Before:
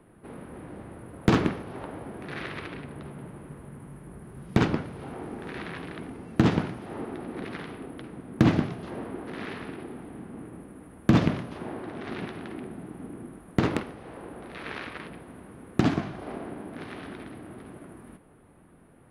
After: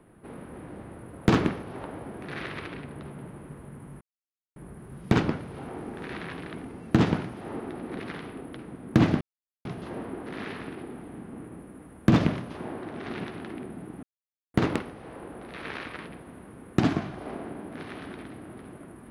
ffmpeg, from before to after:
-filter_complex "[0:a]asplit=5[a][b][c][d][e];[a]atrim=end=4.01,asetpts=PTS-STARTPTS,afade=t=out:st=4.006:d=0.004:c=hsin,apad=pad_dur=0.55[f];[b]atrim=start=4.01:end=8.66,asetpts=PTS-STARTPTS,afade=t=in:d=0.004:c=hsin,afade=t=out:st=4.646:d=0.004:c=hsin,apad=pad_dur=0.44[g];[c]atrim=start=8.66:end=13.04,asetpts=PTS-STARTPTS,afade=t=in:d=0.004:c=hsin,afade=t=out:st=4.376:d=0.004:c=hsin[h];[d]atrim=start=13.04:end=13.55,asetpts=PTS-STARTPTS,volume=0[i];[e]atrim=start=13.55,asetpts=PTS-STARTPTS,afade=t=in:d=0.004:c=hsin[j];[f][g][h][i][j]concat=n=5:v=0:a=1"

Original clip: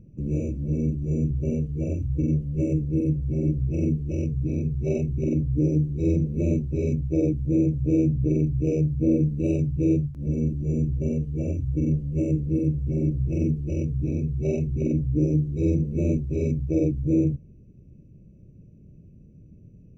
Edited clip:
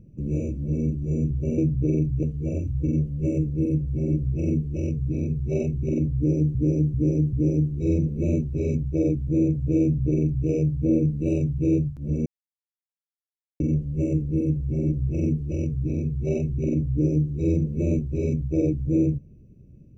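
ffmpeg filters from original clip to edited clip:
-filter_complex "[0:a]asplit=8[a][b][c][d][e][f][g][h];[a]atrim=end=1.582[i];[b]atrim=start=7.998:end=8.652[j];[c]atrim=start=1.578:end=5.902[k];[d]atrim=start=5.508:end=5.902[l];[e]atrim=start=5.508:end=5.902[m];[f]atrim=start=5.508:end=10.44,asetpts=PTS-STARTPTS,afade=t=out:st=4.928:d=0.004:c=hsin[n];[g]atrim=start=10.44:end=11.78,asetpts=PTS-STARTPTS,volume=0[o];[h]atrim=start=11.78,asetpts=PTS-STARTPTS,afade=t=in:d=0.004:c=hsin[p];[i][j]acrossfade=d=0.004:c1=hsin:c2=hsin[q];[q][k]acrossfade=d=0.004:c1=hsin:c2=hsin[r];[r][l]acrossfade=d=0.004:c1=hsin:c2=hsin[s];[s][m]acrossfade=d=0.004:c1=hsin:c2=hsin[t];[n][o][p]concat=n=3:v=0:a=1[u];[t][u]acrossfade=d=0.004:c1=hsin:c2=hsin"

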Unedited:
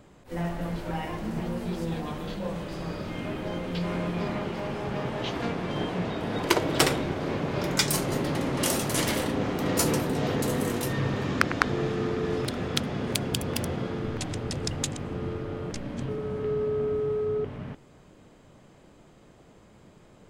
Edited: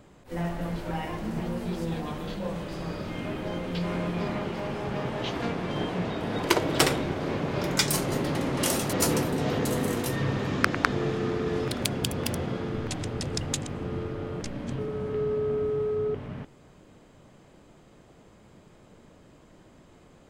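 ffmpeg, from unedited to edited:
-filter_complex "[0:a]asplit=3[a][b][c];[a]atrim=end=8.932[d];[b]atrim=start=9.698:end=12.582[e];[c]atrim=start=13.108[f];[d][e]acrossfade=d=0.004:c1=hsin:c2=hsin[g];[g][f]acrossfade=d=0.004:c1=hsin:c2=hsin"

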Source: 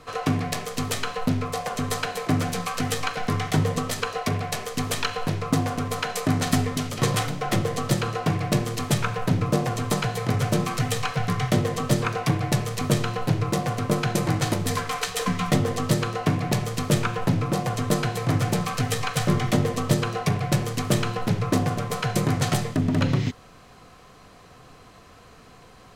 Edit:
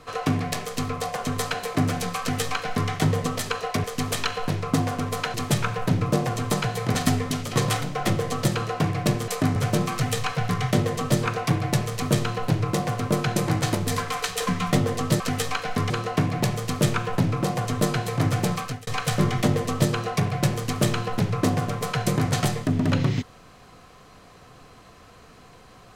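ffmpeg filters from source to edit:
-filter_complex "[0:a]asplit=10[a][b][c][d][e][f][g][h][i][j];[a]atrim=end=0.892[k];[b]atrim=start=1.408:end=4.362[l];[c]atrim=start=4.628:end=6.132[m];[d]atrim=start=8.738:end=10.352[n];[e]atrim=start=6.408:end=8.742[o];[f]atrim=start=6.128:end=6.412[p];[g]atrim=start=10.348:end=15.992[q];[h]atrim=start=2.718:end=3.422[r];[i]atrim=start=15.988:end=18.96,asetpts=PTS-STARTPTS,afade=t=out:st=2.652:d=0.32[s];[j]atrim=start=18.96,asetpts=PTS-STARTPTS,afade=t=in:d=0.004:c=hsin[t];[k][l]acrossfade=d=0.004:c1=hsin:c2=hsin[u];[u][m]acrossfade=d=0.004:c1=hsin:c2=hsin[v];[v][n]acrossfade=d=0.004:c1=hsin:c2=hsin[w];[w][o]acrossfade=d=0.004:c1=hsin:c2=hsin[x];[x][p]acrossfade=d=0.004:c1=hsin:c2=hsin[y];[y][q]acrossfade=d=0.004:c1=hsin:c2=hsin[z];[z][r]acrossfade=d=0.004:c1=hsin:c2=hsin[aa];[s][t]concat=n=2:v=0:a=1[ab];[aa][ab]acrossfade=d=0.004:c1=hsin:c2=hsin"

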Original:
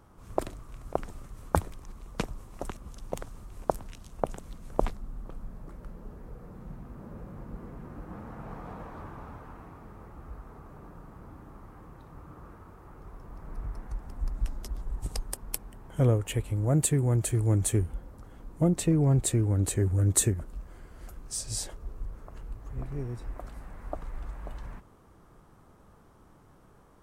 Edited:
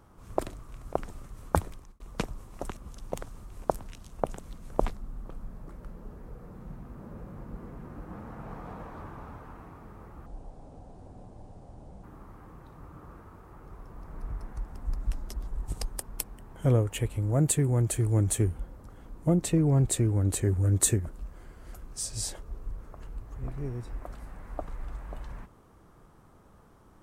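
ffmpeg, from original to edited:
-filter_complex "[0:a]asplit=4[a][b][c][d];[a]atrim=end=2,asetpts=PTS-STARTPTS,afade=t=out:st=1.73:d=0.27[e];[b]atrim=start=2:end=10.264,asetpts=PTS-STARTPTS,afade=t=in:d=0.004:c=hsin[f];[c]atrim=start=10.26:end=11.38,asetpts=PTS-STARTPTS,asetrate=27783,aresample=44100[g];[d]atrim=start=11.376[h];[e][f]concat=n=2:v=0:a=1[i];[i][g]acrossfade=d=0.004:c1=hsin:c2=hsin[j];[j][h]acrossfade=d=0.004:c1=hsin:c2=hsin"

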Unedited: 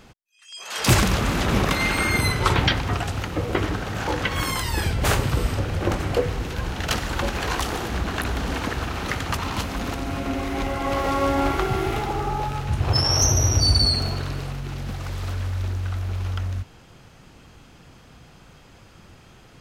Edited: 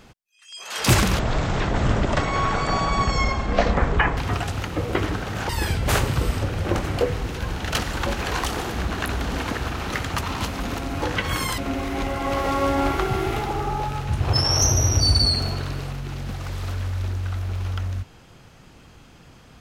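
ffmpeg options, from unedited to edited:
-filter_complex "[0:a]asplit=6[a][b][c][d][e][f];[a]atrim=end=1.194[g];[b]atrim=start=1.19:end=2.77,asetpts=PTS-STARTPTS,asetrate=23373,aresample=44100[h];[c]atrim=start=2.766:end=4.092[i];[d]atrim=start=4.648:end=10.182[j];[e]atrim=start=4.088:end=4.652[k];[f]atrim=start=10.178[l];[g][h]acrossfade=d=0.004:c1=hsin:c2=hsin[m];[m][i]acrossfade=d=0.004:c1=hsin:c2=hsin[n];[n][j]acrossfade=d=0.004:c1=hsin:c2=hsin[o];[o][k]acrossfade=d=0.004:c1=hsin:c2=hsin[p];[p][l]acrossfade=d=0.004:c1=hsin:c2=hsin"

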